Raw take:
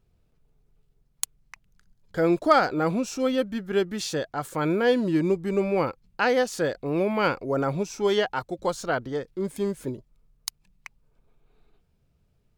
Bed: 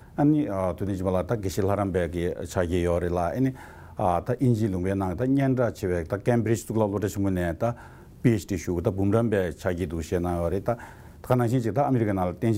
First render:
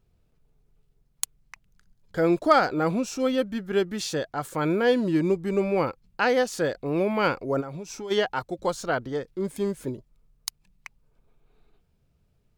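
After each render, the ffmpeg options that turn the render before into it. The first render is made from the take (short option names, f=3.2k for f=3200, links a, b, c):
-filter_complex "[0:a]asplit=3[a][b][c];[a]afade=t=out:st=7.6:d=0.02[d];[b]acompressor=threshold=-32dB:ratio=8:attack=3.2:release=140:knee=1:detection=peak,afade=t=in:st=7.6:d=0.02,afade=t=out:st=8.1:d=0.02[e];[c]afade=t=in:st=8.1:d=0.02[f];[d][e][f]amix=inputs=3:normalize=0"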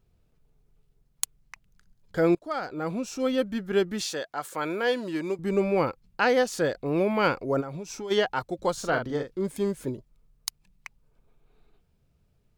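-filter_complex "[0:a]asettb=1/sr,asplit=3[a][b][c];[a]atrim=end=4.034[d];[b]atrim=start=4.03:end=5.39,asetpts=PTS-STARTPTS,afade=t=in:d=0.004:c=qsin,afade=t=out:st=1.356:d=0.004:c=qsin,highpass=f=670:p=1[e];[c]atrim=start=5.386[f];[d][e]acrossfade=d=0.004:c1=hsin:c2=qsin[g];[g][f]acrossfade=d=0.004:c1=qsin:c2=hsin,asettb=1/sr,asplit=3[h][i][j];[h]atrim=end=8.734[k];[i]atrim=start=8.73:end=9.38,asetpts=PTS-STARTPTS,afade=t=in:d=0.004:c=qsin,afade=t=out:st=0.646:d=0.004:c=qsin,asplit=2[l][m];[m]adelay=42,volume=-6dB[n];[l][n]amix=inputs=2:normalize=0,atrim=end_sample=28665[o];[j]atrim=start=9.376[p];[k][o]acrossfade=d=0.004:c1=hsin:c2=qsin[q];[q][p]acrossfade=d=0.004:c1=qsin:c2=hsin,asplit=2[r][s];[r]atrim=end=2.35,asetpts=PTS-STARTPTS,afade=t=out:st=2.346:d=0.004:c=hsin:silence=0.0749894[t];[s]atrim=start=2.35,asetpts=PTS-STARTPTS,afade=t=in:d=1.15:silence=0.0749894[u];[t][u]concat=n=2:v=0:a=1"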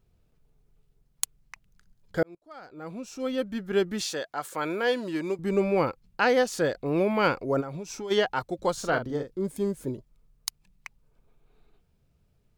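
-filter_complex "[0:a]asettb=1/sr,asplit=3[a][b][c];[a]atrim=end=8.984[d];[b]atrim=start=8.98:end=9.9,asetpts=PTS-STARTPTS,afade=t=in:d=0.004:c=qsin,afade=t=out:st=0.916:d=0.004:c=qsin,equalizer=f=2.2k:t=o:w=2.8:g=-6.5[e];[c]atrim=start=9.896[f];[d][e]acrossfade=d=0.004:c1=hsin:c2=qsin[g];[g][f]acrossfade=d=0.004:c1=qsin:c2=hsin,asplit=2[h][i];[h]atrim=end=2.23,asetpts=PTS-STARTPTS,afade=t=out:st=2.226:d=0.004:c=hsin[j];[i]atrim=start=2.23,asetpts=PTS-STARTPTS,afade=t=in:d=1.68[k];[j][k]concat=n=2:v=0:a=1"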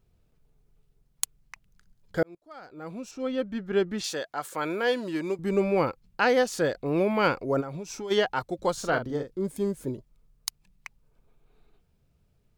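-filter_complex "[0:a]asettb=1/sr,asplit=3[a][b][c];[a]atrim=end=3.114[d];[b]atrim=start=3.11:end=4.04,asetpts=PTS-STARTPTS,afade=t=in:d=0.004:c=qsin,afade=t=out:st=0.926:d=0.004:c=qsin,equalizer=f=14k:w=0.37:g=-14.5[e];[c]atrim=start=4.036[f];[d][e]acrossfade=d=0.004:c1=hsin:c2=qsin[g];[g][f]acrossfade=d=0.004:c1=qsin:c2=hsin"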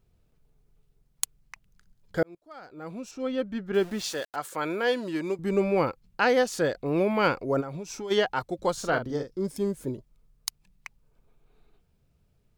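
-filter_complex "[0:a]asettb=1/sr,asplit=3[a][b][c];[a]atrim=end=3.744[d];[b]atrim=start=3.74:end=4.36,asetpts=PTS-STARTPTS,afade=t=in:d=0.004:c=qsin,afade=t=out:st=0.616:d=0.004:c=qsin,aeval=exprs='val(0)*gte(abs(val(0)),0.01)':c=same[e];[c]atrim=start=4.356[f];[d][e]acrossfade=d=0.004:c1=hsin:c2=qsin[g];[g][f]acrossfade=d=0.004:c1=qsin:c2=hsin,asettb=1/sr,asplit=3[h][i][j];[h]atrim=end=9.104[k];[i]atrim=start=9.1:end=9.58,asetpts=PTS-STARTPTS,afade=t=in:d=0.004:c=qsin,afade=t=out:st=0.476:d=0.004:c=qsin,equalizer=f=5.3k:w=4.2:g=13.5[l];[j]atrim=start=9.576[m];[k][l]acrossfade=d=0.004:c1=hsin:c2=qsin[n];[n][m]acrossfade=d=0.004:c1=qsin:c2=hsin"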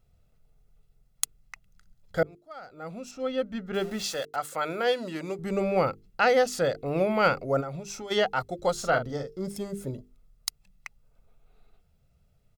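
-af "bandreject=f=50:t=h:w=6,bandreject=f=100:t=h:w=6,bandreject=f=150:t=h:w=6,bandreject=f=200:t=h:w=6,bandreject=f=250:t=h:w=6,bandreject=f=300:t=h:w=6,bandreject=f=350:t=h:w=6,bandreject=f=400:t=h:w=6,bandreject=f=450:t=h:w=6,aecho=1:1:1.5:0.47"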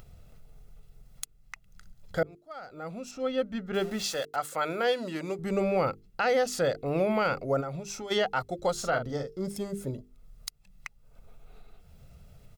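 -af "alimiter=limit=-17dB:level=0:latency=1:release=86,acompressor=mode=upward:threshold=-38dB:ratio=2.5"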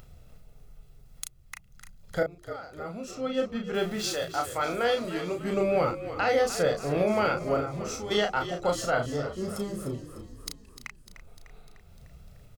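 -filter_complex "[0:a]asplit=2[a][b];[b]adelay=34,volume=-5dB[c];[a][c]amix=inputs=2:normalize=0,asplit=2[d][e];[e]asplit=6[f][g][h][i][j][k];[f]adelay=300,afreqshift=-46,volume=-12dB[l];[g]adelay=600,afreqshift=-92,volume=-16.7dB[m];[h]adelay=900,afreqshift=-138,volume=-21.5dB[n];[i]adelay=1200,afreqshift=-184,volume=-26.2dB[o];[j]adelay=1500,afreqshift=-230,volume=-30.9dB[p];[k]adelay=1800,afreqshift=-276,volume=-35.7dB[q];[l][m][n][o][p][q]amix=inputs=6:normalize=0[r];[d][r]amix=inputs=2:normalize=0"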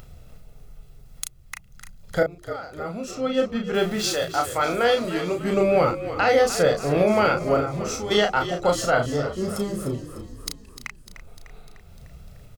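-af "volume=6dB"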